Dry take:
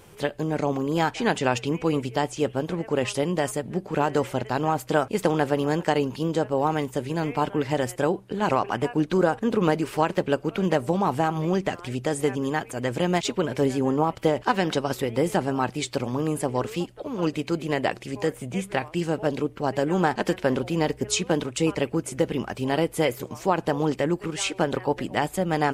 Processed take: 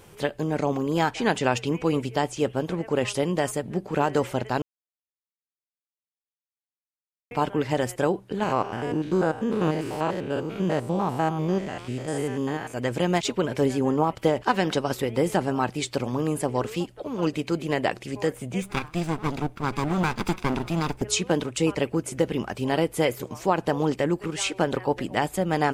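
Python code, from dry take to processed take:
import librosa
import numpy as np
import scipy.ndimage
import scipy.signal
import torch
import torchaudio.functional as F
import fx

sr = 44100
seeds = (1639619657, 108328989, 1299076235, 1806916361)

y = fx.spec_steps(x, sr, hold_ms=100, at=(8.43, 12.74))
y = fx.lower_of_two(y, sr, delay_ms=0.82, at=(18.62, 21.02))
y = fx.edit(y, sr, fx.silence(start_s=4.62, length_s=2.69), tone=tone)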